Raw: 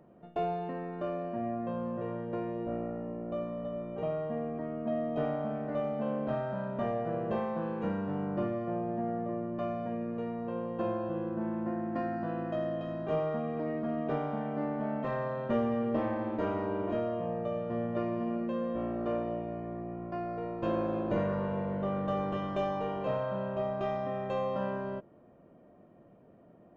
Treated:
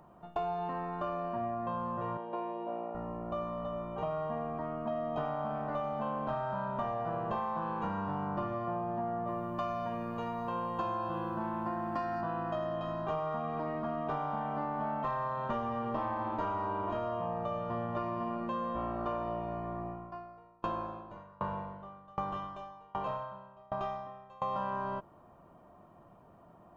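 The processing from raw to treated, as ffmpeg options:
ffmpeg -i in.wav -filter_complex "[0:a]asettb=1/sr,asplit=3[link_01][link_02][link_03];[link_01]atrim=end=2.174[link_04];[link_02]atrim=start=2.17:end=2.95,asetpts=PTS-STARTPTS,afade=type=in:duration=0.004:curve=qsin,afade=type=out:start_time=0.776:duration=0.004:curve=qsin,highpass=frequency=230:width=0.5412,highpass=frequency=230:width=1.3066,equalizer=frequency=260:width_type=q:width=4:gain=-7,equalizer=frequency=1300:width_type=q:width=4:gain=-10,equalizer=frequency=1900:width_type=q:width=4:gain=-7,lowpass=frequency=3800:width=0.5412,lowpass=frequency=3800:width=1.3066[link_05];[link_03]atrim=start=2.946[link_06];[link_04][link_05]acrossfade=duration=0.004:curve1=hsin:curve2=qsin[link_07];[link_07][link_06]acrossfade=duration=0.004:curve1=qsin:curve2=hsin,asettb=1/sr,asplit=3[link_08][link_09][link_10];[link_08]atrim=end=9.274[link_11];[link_09]atrim=start=9.27:end=12.21,asetpts=PTS-STARTPTS,afade=type=in:duration=0.004:curve=qsin,afade=type=out:start_time=2.936:duration=0.004:curve=qsin,highshelf=frequency=3600:gain=12[link_12];[link_10]atrim=start=12.206[link_13];[link_11][link_12]acrossfade=duration=0.004:curve1=hsin:curve2=qsin[link_14];[link_14][link_13]acrossfade=duration=0.004:curve1=qsin:curve2=hsin,asettb=1/sr,asplit=3[link_15][link_16][link_17];[link_15]atrim=end=19.874[link_18];[link_16]atrim=start=19.87:end=24.42,asetpts=PTS-STARTPTS,afade=type=in:duration=0.004:curve=qsin,afade=type=out:start_time=4.546:duration=0.004:curve=qsin,aeval=exprs='val(0)*pow(10,-30*if(lt(mod(1.3*n/s,1),2*abs(1.3)/1000),1-mod(1.3*n/s,1)/(2*abs(1.3)/1000),(mod(1.3*n/s,1)-2*abs(1.3)/1000)/(1-2*abs(1.3)/1000))/20)':channel_layout=same[link_19];[link_17]atrim=start=24.416[link_20];[link_18][link_19]acrossfade=duration=0.004:curve1=hsin:curve2=qsin[link_21];[link_21][link_20]acrossfade=duration=0.004:curve1=qsin:curve2=hsin,equalizer=frequency=125:width_type=o:width=1:gain=-4,equalizer=frequency=250:width_type=o:width=1:gain=-9,equalizer=frequency=500:width_type=o:width=1:gain=-11,equalizer=frequency=1000:width_type=o:width=1:gain=9,equalizer=frequency=2000:width_type=o:width=1:gain=-8,acompressor=threshold=-38dB:ratio=6,volume=7dB" out.wav

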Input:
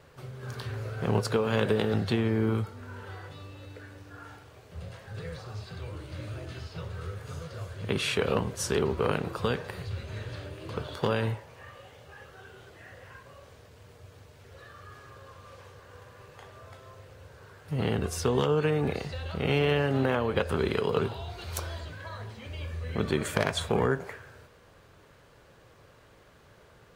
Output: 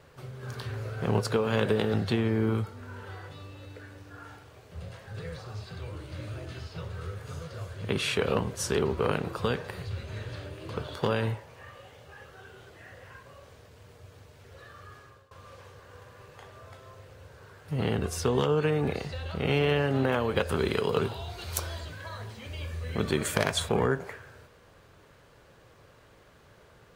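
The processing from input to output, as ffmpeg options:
ffmpeg -i in.wav -filter_complex "[0:a]asettb=1/sr,asplit=3[link_01][link_02][link_03];[link_01]atrim=end=20.124[link_04];[link_02]atrim=start=20.12:end=23.69,asetpts=PTS-STARTPTS,afade=type=in:duration=0.004:curve=qsin,afade=type=out:start_time=3.566:duration=0.004:curve=qsin,highshelf=frequency=4600:gain=6.5[link_05];[link_03]atrim=start=23.686[link_06];[link_04][link_05]acrossfade=duration=0.004:curve1=hsin:curve2=qsin[link_07];[link_07][link_06]acrossfade=duration=0.004:curve1=qsin:curve2=hsin,asplit=2[link_08][link_09];[link_08]atrim=end=15.31,asetpts=PTS-STARTPTS,afade=type=out:start_time=14.79:duration=0.52:curve=qsin:silence=0.0891251[link_10];[link_09]atrim=start=15.31,asetpts=PTS-STARTPTS,afade=type=in:duration=0.004:curve=hsin:silence=0.0891251[link_11];[link_10][link_11]concat=n=2:v=0:a=1" out.wav

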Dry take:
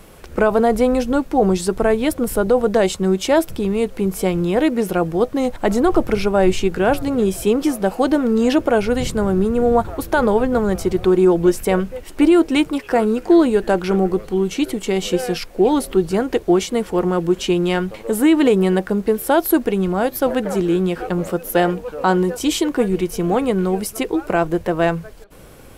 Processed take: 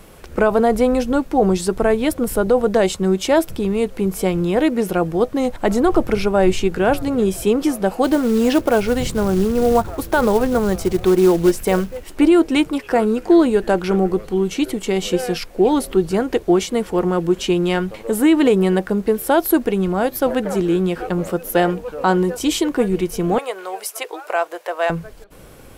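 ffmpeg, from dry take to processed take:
ffmpeg -i in.wav -filter_complex "[0:a]asplit=3[link_01][link_02][link_03];[link_01]afade=type=out:start_time=8.03:duration=0.02[link_04];[link_02]acrusher=bits=5:mode=log:mix=0:aa=0.000001,afade=type=in:start_time=8.03:duration=0.02,afade=type=out:start_time=12.12:duration=0.02[link_05];[link_03]afade=type=in:start_time=12.12:duration=0.02[link_06];[link_04][link_05][link_06]amix=inputs=3:normalize=0,asettb=1/sr,asplit=3[link_07][link_08][link_09];[link_07]atrim=end=23.384[link_10];[link_08]atrim=start=23.38:end=24.9,asetpts=PTS-STARTPTS,afade=type=in:duration=0.004:curve=qsin,afade=type=out:start_time=1.516:duration=0.004:curve=qsin,highpass=frequency=550:width=0.5412,highpass=frequency=550:width=1.3066[link_11];[link_09]atrim=start=24.896[link_12];[link_10][link_11]acrossfade=duration=0.004:curve1=hsin:curve2=qsin[link_13];[link_13][link_12]acrossfade=duration=0.004:curve1=qsin:curve2=hsin" out.wav

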